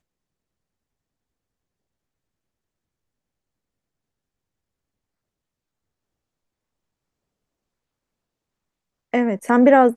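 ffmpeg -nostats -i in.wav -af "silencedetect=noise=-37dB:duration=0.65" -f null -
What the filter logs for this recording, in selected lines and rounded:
silence_start: 0.00
silence_end: 9.14 | silence_duration: 9.14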